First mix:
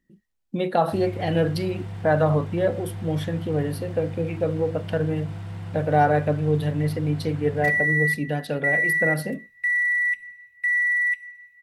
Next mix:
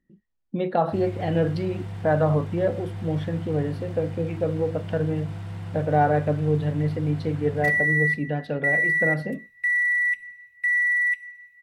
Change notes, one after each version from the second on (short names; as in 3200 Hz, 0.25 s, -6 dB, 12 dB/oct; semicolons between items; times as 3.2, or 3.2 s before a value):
speech: add tape spacing loss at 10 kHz 21 dB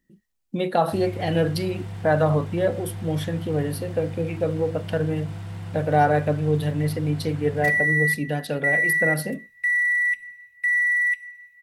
speech: remove tape spacing loss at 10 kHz 21 dB; master: add high shelf 4800 Hz +6 dB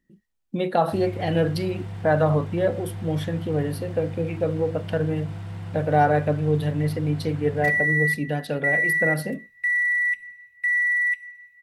master: add high shelf 4800 Hz -6 dB